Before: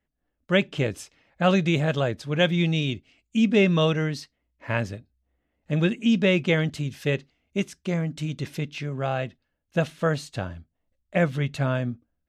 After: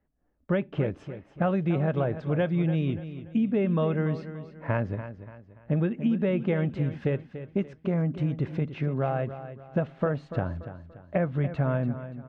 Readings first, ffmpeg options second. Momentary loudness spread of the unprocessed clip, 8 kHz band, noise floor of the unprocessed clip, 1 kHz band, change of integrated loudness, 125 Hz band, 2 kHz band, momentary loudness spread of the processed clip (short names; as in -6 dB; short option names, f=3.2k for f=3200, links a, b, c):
12 LU, under -25 dB, -79 dBFS, -3.5 dB, -3.5 dB, -1.0 dB, -10.0 dB, 10 LU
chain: -af "lowpass=1.3k,acompressor=threshold=-28dB:ratio=6,aecho=1:1:289|578|867|1156:0.251|0.0955|0.0363|0.0138,volume=5dB"